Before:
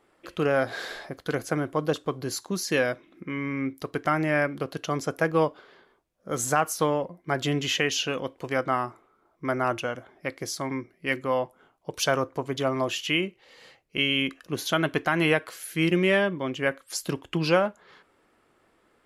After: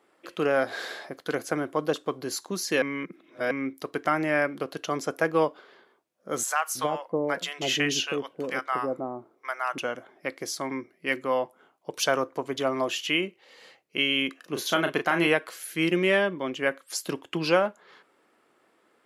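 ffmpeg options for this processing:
ffmpeg -i in.wav -filter_complex "[0:a]asettb=1/sr,asplit=3[link_01][link_02][link_03];[link_01]atrim=end=6.434[link_04];[link_02]atrim=start=6.43:end=9.78,asetpts=PTS-STARTPTS,afade=type=in:duration=0.004:curve=qsin,afade=type=out:start_time=3.346:duration=0.004:curve=qsin,acrossover=split=730[link_05][link_06];[link_05]adelay=320[link_07];[link_07][link_06]amix=inputs=2:normalize=0,atrim=end_sample=147735[link_08];[link_03]atrim=start=9.776[link_09];[link_04][link_08]acrossfade=duration=0.004:curve1=hsin:curve2=qsin[link_10];[link_10][link_09]acrossfade=duration=0.004:curve1=qsin:curve2=hsin,asettb=1/sr,asplit=3[link_11][link_12][link_13];[link_11]atrim=end=14.364[link_14];[link_12]atrim=start=14.36:end=15.27,asetpts=PTS-STARTPTS,afade=type=in:duration=0.004:curve=qsin,afade=type=out:start_time=0.906:duration=0.004:curve=qsin,asplit=2[link_15][link_16];[link_16]adelay=35,volume=-7dB[link_17];[link_15][link_17]amix=inputs=2:normalize=0,atrim=end_sample=40131[link_18];[link_13]atrim=start=15.266[link_19];[link_14][link_18]acrossfade=duration=0.004:curve1=hsin:curve2=qsin[link_20];[link_20][link_19]acrossfade=duration=0.004:curve1=qsin:curve2=hsin,asplit=3[link_21][link_22][link_23];[link_21]atrim=end=2.822[link_24];[link_22]atrim=start=2.818:end=3.512,asetpts=PTS-STARTPTS,areverse[link_25];[link_23]atrim=start=3.508[link_26];[link_24][link_25]acrossfade=duration=0.004:curve1=hsin:curve2=hsin[link_27];[link_27][link_26]acrossfade=duration=0.004:curve1=hsin:curve2=hsin,highpass=220" out.wav

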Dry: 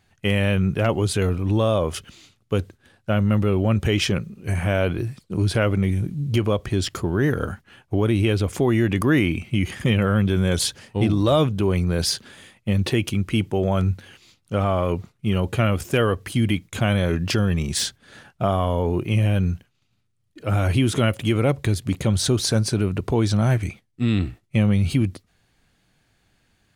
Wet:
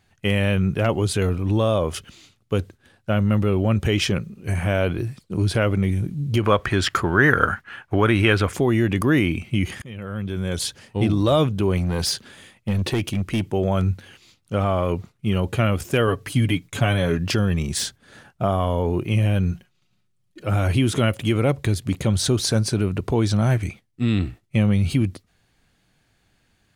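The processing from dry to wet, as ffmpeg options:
ffmpeg -i in.wav -filter_complex "[0:a]asettb=1/sr,asplit=3[link_01][link_02][link_03];[link_01]atrim=end=6.434[link_04];[link_02]atrim=start=6.43:end=8.53,asetpts=PTS-STARTPTS,afade=type=in:duration=0.004:curve=qsin,afade=type=out:start_time=2.096:duration=0.004:curve=qsin,equalizer=frequency=1500:width_type=o:width=1.7:gain=14.5[link_05];[link_03]atrim=start=8.526[link_06];[link_04][link_05]acrossfade=duration=0.004:curve1=hsin:curve2=qsin[link_07];[link_07][link_06]acrossfade=duration=0.004:curve1=qsin:curve2=hsin,asettb=1/sr,asplit=3[link_08][link_09][link_10];[link_08]atrim=end=11.774[link_11];[link_09]atrim=start=11.77:end=13.51,asetpts=PTS-STARTPTS,afade=type=in:duration=0.004:curve=qsin,afade=type=out:start_time=1.736:duration=0.004:curve=qsin,asoftclip=type=hard:threshold=-17dB[link_12];[link_10]atrim=start=13.506[link_13];[link_11][link_12]acrossfade=duration=0.004:curve1=hsin:curve2=qsin[link_14];[link_14][link_13]acrossfade=duration=0.004:curve1=qsin:curve2=hsin,asettb=1/sr,asplit=3[link_15][link_16][link_17];[link_15]atrim=end=16.074[link_18];[link_16]atrim=start=16.07:end=17.18,asetpts=PTS-STARTPTS,afade=type=in:duration=0.004:curve=qsin,afade=type=out:start_time=1.106:duration=0.004:curve=qsin,aecho=1:1:7.1:0.55,atrim=end_sample=48951[link_19];[link_17]atrim=start=17.176[link_20];[link_18][link_19]acrossfade=duration=0.004:curve1=hsin:curve2=qsin[link_21];[link_21][link_20]acrossfade=duration=0.004:curve1=qsin:curve2=hsin,asettb=1/sr,asplit=3[link_22][link_23][link_24];[link_22]atrim=end=17.684[link_25];[link_23]atrim=start=17.68:end=18.6,asetpts=PTS-STARTPTS,afade=type=in:duration=0.004:curve=qsin,afade=type=out:start_time=0.916:duration=0.004:curve=qsin,equalizer=frequency=3200:width_type=o:width=1.7:gain=-3[link_26];[link_24]atrim=start=18.596[link_27];[link_25][link_26]acrossfade=duration=0.004:curve1=hsin:curve2=qsin[link_28];[link_28][link_27]acrossfade=duration=0.004:curve1=qsin:curve2=hsin,asettb=1/sr,asplit=3[link_29][link_30][link_31];[link_29]atrim=end=19.514[link_32];[link_30]atrim=start=19.51:end=20.47,asetpts=PTS-STARTPTS,afade=type=in:duration=0.004:curve=qsin,afade=type=out:start_time=0.956:duration=0.004:curve=qsin,aecho=1:1:5.5:0.55,atrim=end_sample=42336[link_33];[link_31]atrim=start=20.466[link_34];[link_32][link_33]acrossfade=duration=0.004:curve1=hsin:curve2=qsin[link_35];[link_35][link_34]acrossfade=duration=0.004:curve1=qsin:curve2=hsin,asplit=2[link_36][link_37];[link_36]atrim=end=9.82,asetpts=PTS-STARTPTS,afade=type=out:start_time=9.816:duration=0.004:curve=hsin:silence=0.0668344[link_38];[link_37]atrim=start=9.82,asetpts=PTS-STARTPTS,afade=type=in:duration=1.26:silence=0.0668344[link_39];[link_38][link_39]concat=n=2:v=0:a=1" out.wav

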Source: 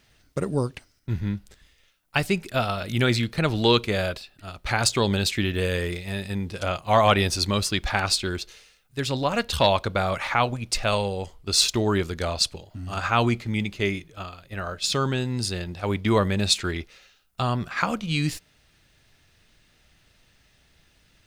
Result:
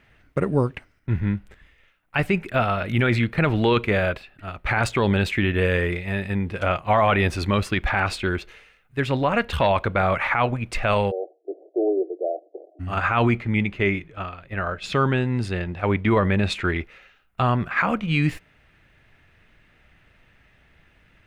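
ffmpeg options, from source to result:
ffmpeg -i in.wav -filter_complex "[0:a]asplit=3[link_01][link_02][link_03];[link_01]afade=type=out:start_time=11.1:duration=0.02[link_04];[link_02]asuperpass=centerf=480:order=20:qfactor=1.1,afade=type=in:start_time=11.1:duration=0.02,afade=type=out:start_time=12.79:duration=0.02[link_05];[link_03]afade=type=in:start_time=12.79:duration=0.02[link_06];[link_04][link_05][link_06]amix=inputs=3:normalize=0,asettb=1/sr,asplit=3[link_07][link_08][link_09];[link_07]atrim=end=13.374[link_10];[link_08]atrim=start=13.37:end=16.68,asetpts=PTS-STARTPTS,afade=type=in:duration=0.004:curve=qsin,afade=type=out:start_time=3.306:duration=0.004:curve=qsin,highshelf=frequency=11000:gain=-10.5[link_11];[link_09]atrim=start=16.676[link_12];[link_10][link_11]acrossfade=duration=0.004:curve1=hsin:curve2=qsin[link_13];[link_13][link_12]acrossfade=duration=0.004:curve1=qsin:curve2=hsin,highshelf=frequency=3300:width_type=q:width=1.5:gain=-13.5,alimiter=limit=-14dB:level=0:latency=1:release=11,volume=4dB" out.wav

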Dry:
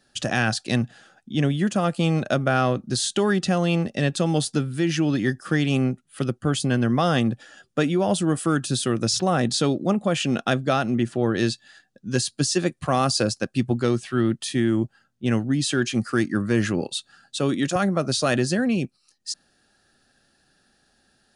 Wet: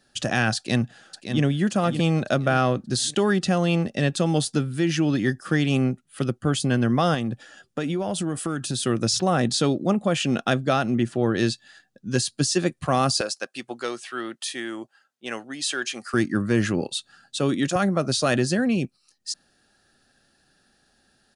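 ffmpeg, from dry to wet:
ffmpeg -i in.wav -filter_complex "[0:a]asplit=2[link_01][link_02];[link_02]afade=type=in:start_time=0.56:duration=0.01,afade=type=out:start_time=1.43:duration=0.01,aecho=0:1:570|1140|1710|2280|2850:0.398107|0.159243|0.0636971|0.0254789|0.0101915[link_03];[link_01][link_03]amix=inputs=2:normalize=0,asettb=1/sr,asplit=3[link_04][link_05][link_06];[link_04]atrim=end=7.144[link_07];[link_05]atrim=start=7.14:end=8.86,asetpts=PTS-STARTPTS,afade=type=in:duration=0.004:curve=qsin,afade=type=out:start_time=1.716:duration=0.004:curve=qsin,acompressor=threshold=-22dB:ratio=6:attack=3.2:release=140:knee=1:detection=peak[link_08];[link_06]atrim=start=8.856[link_09];[link_07][link_08]acrossfade=duration=0.004:curve1=hsin:curve2=qsin[link_10];[link_10][link_09]acrossfade=duration=0.004:curve1=qsin:curve2=hsin,asettb=1/sr,asplit=3[link_11][link_12][link_13];[link_11]atrim=end=13.214[link_14];[link_12]atrim=start=13.21:end=16.14,asetpts=PTS-STARTPTS,afade=type=in:duration=0.004:curve=qsin,afade=type=out:start_time=2.926:duration=0.004:curve=qsin,highpass=600[link_15];[link_13]atrim=start=16.136[link_16];[link_14][link_15]acrossfade=duration=0.004:curve1=hsin:curve2=qsin[link_17];[link_17][link_16]acrossfade=duration=0.004:curve1=qsin:curve2=hsin" out.wav

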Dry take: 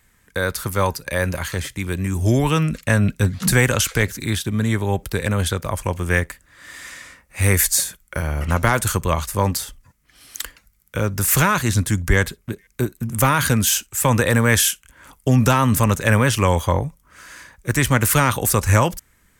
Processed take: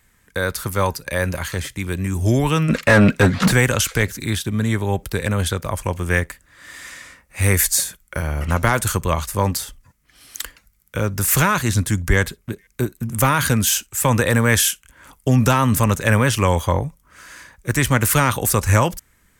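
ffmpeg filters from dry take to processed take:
ffmpeg -i in.wav -filter_complex "[0:a]asplit=3[link_01][link_02][link_03];[link_01]afade=type=out:start_time=2.68:duration=0.02[link_04];[link_02]asplit=2[link_05][link_06];[link_06]highpass=frequency=720:poles=1,volume=27dB,asoftclip=type=tanh:threshold=-1.5dB[link_07];[link_05][link_07]amix=inputs=2:normalize=0,lowpass=frequency=1400:poles=1,volume=-6dB,afade=type=in:start_time=2.68:duration=0.02,afade=type=out:start_time=3.51:duration=0.02[link_08];[link_03]afade=type=in:start_time=3.51:duration=0.02[link_09];[link_04][link_08][link_09]amix=inputs=3:normalize=0" out.wav

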